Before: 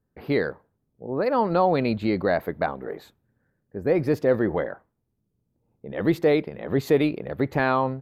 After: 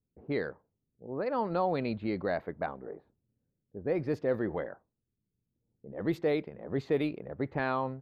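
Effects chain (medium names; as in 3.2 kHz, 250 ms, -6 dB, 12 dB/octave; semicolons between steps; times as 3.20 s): level-controlled noise filter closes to 440 Hz, open at -16 dBFS; trim -9 dB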